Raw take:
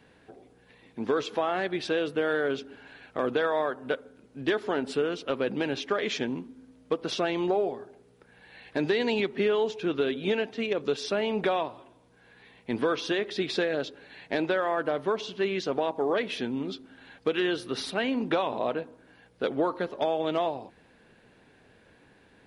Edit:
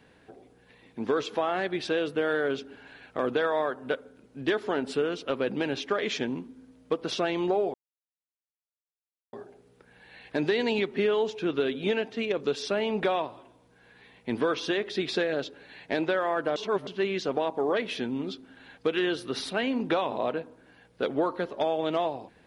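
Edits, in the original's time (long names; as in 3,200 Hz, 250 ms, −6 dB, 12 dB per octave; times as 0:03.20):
0:07.74: splice in silence 1.59 s
0:14.97–0:15.28: reverse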